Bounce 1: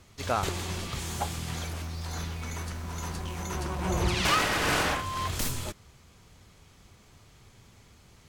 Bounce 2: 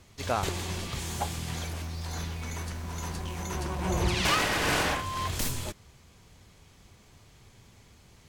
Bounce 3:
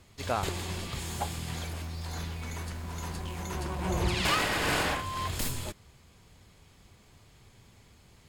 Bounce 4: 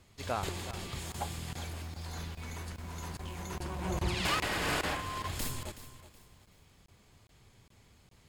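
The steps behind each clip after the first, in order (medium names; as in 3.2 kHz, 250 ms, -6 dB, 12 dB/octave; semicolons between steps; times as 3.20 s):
peaking EQ 1.3 kHz -4 dB 0.22 oct
band-stop 5.9 kHz, Q 9.1; trim -1.5 dB
crackling interface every 0.41 s, samples 1024, zero, from 0.71 s; bit-crushed delay 373 ms, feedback 35%, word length 9-bit, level -14 dB; trim -4 dB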